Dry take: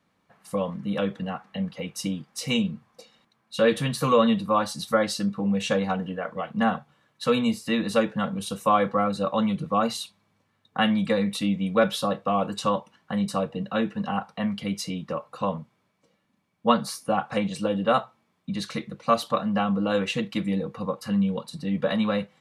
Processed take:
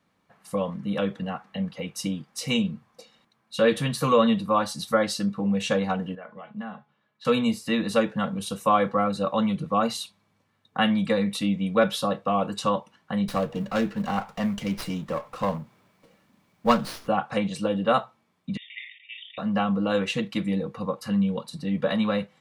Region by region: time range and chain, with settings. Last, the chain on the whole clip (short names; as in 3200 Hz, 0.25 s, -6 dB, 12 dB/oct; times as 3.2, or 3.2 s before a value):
6.15–7.25 compressor 2:1, threshold -31 dBFS + BPF 100–4000 Hz + resonator 210 Hz, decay 0.16 s, mix 70%
13.28–17.08 G.711 law mismatch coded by mu + running maximum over 5 samples
18.57–19.38 brick-wall FIR band-pass 1800–3700 Hz + sustainer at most 83 dB/s
whole clip: dry